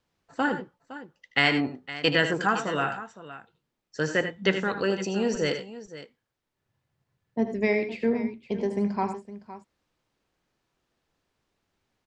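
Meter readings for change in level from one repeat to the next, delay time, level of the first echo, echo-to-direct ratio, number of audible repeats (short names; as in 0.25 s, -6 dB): no steady repeat, 78 ms, -11.0 dB, -7.5 dB, 2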